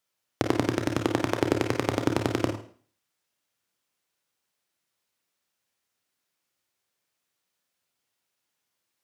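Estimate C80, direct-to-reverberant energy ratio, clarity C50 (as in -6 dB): 11.5 dB, 3.5 dB, 6.0 dB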